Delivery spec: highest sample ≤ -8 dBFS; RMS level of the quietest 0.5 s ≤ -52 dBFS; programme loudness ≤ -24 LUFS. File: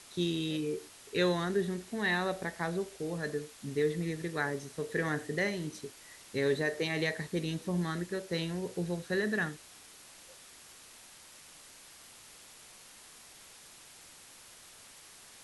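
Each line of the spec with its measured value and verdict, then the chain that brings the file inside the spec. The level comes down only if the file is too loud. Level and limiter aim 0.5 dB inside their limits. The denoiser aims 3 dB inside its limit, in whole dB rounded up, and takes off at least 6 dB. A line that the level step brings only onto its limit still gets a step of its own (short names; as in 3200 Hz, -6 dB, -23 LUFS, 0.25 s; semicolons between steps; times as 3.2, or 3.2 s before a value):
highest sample -17.5 dBFS: OK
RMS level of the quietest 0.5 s -54 dBFS: OK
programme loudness -34.0 LUFS: OK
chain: none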